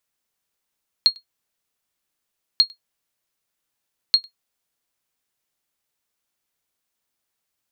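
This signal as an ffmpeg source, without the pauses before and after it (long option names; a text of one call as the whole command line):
ffmpeg -f lavfi -i "aevalsrc='0.562*(sin(2*PI*4270*mod(t,1.54))*exp(-6.91*mod(t,1.54)/0.11)+0.0376*sin(2*PI*4270*max(mod(t,1.54)-0.1,0))*exp(-6.91*max(mod(t,1.54)-0.1,0)/0.11))':duration=4.62:sample_rate=44100" out.wav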